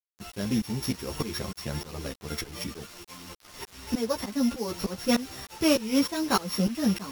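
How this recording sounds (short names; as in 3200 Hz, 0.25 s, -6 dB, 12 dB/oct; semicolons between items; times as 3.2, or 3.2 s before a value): a buzz of ramps at a fixed pitch in blocks of 8 samples; tremolo saw up 3.3 Hz, depth 95%; a quantiser's noise floor 8-bit, dither none; a shimmering, thickened sound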